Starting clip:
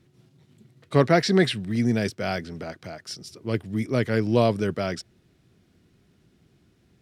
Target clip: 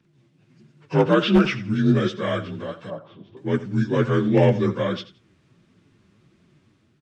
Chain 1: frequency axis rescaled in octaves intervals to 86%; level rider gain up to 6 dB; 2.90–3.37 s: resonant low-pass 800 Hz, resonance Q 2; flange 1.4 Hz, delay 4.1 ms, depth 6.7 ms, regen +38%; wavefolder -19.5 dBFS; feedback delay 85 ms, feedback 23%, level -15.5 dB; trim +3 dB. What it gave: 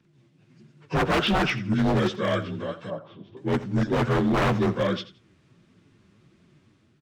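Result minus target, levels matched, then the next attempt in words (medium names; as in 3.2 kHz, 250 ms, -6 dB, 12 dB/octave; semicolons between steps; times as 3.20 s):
wavefolder: distortion +21 dB
frequency axis rescaled in octaves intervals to 86%; level rider gain up to 6 dB; 2.90–3.37 s: resonant low-pass 800 Hz, resonance Q 2; flange 1.4 Hz, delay 4.1 ms, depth 6.7 ms, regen +38%; wavefolder -10.5 dBFS; feedback delay 85 ms, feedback 23%, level -15.5 dB; trim +3 dB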